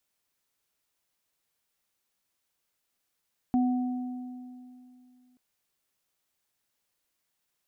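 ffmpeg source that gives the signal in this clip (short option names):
-f lavfi -i "aevalsrc='0.0944*pow(10,-3*t/2.67)*sin(2*PI*251*t)+0.0282*pow(10,-3*t/2.07)*sin(2*PI*742*t)':d=1.83:s=44100"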